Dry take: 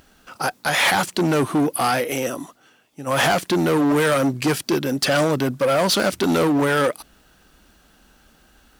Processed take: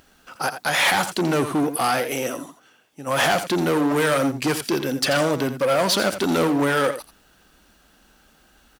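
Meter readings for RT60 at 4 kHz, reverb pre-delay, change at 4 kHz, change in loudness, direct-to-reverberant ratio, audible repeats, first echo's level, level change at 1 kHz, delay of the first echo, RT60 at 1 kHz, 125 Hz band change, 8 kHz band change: none, none, -0.5 dB, -1.5 dB, none, 1, -11.0 dB, -1.0 dB, 85 ms, none, -3.5 dB, -0.5 dB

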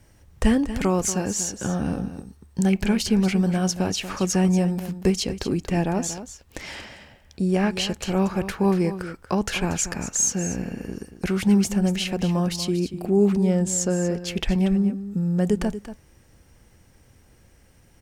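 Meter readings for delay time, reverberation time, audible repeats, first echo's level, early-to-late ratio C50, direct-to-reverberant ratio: 0.235 s, none, 1, -12.0 dB, none, none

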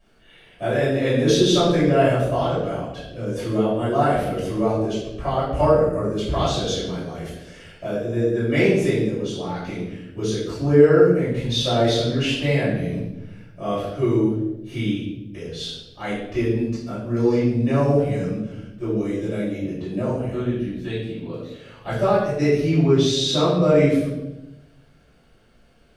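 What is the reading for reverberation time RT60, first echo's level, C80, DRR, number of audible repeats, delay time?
0.95 s, none, 4.0 dB, -12.5 dB, none, none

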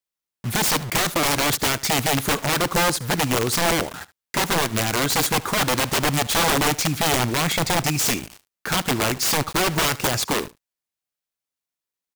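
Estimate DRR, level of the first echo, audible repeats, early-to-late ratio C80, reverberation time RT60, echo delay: none, -20.0 dB, 1, none, none, 74 ms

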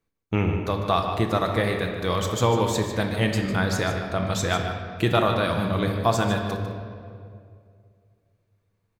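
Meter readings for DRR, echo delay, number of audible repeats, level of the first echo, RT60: 2.0 dB, 0.15 s, 1, -10.0 dB, 2.3 s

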